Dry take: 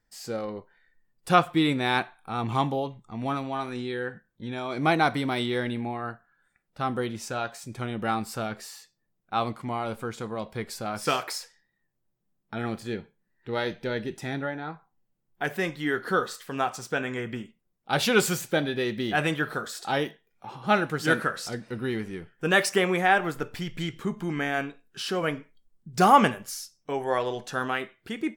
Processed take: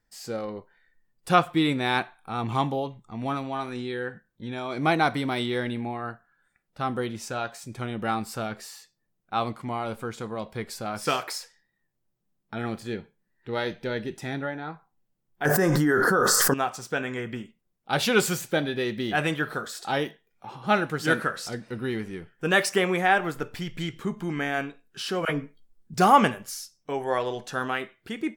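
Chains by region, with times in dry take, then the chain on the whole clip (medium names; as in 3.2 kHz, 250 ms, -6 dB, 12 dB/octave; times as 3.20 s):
15.45–16.54 s: high-order bell 2.9 kHz -15.5 dB 1.2 oct + doubling 20 ms -13.5 dB + level flattener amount 100%
25.25–25.94 s: doubling 14 ms -2.5 dB + phase dispersion lows, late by 42 ms, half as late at 740 Hz
whole clip: none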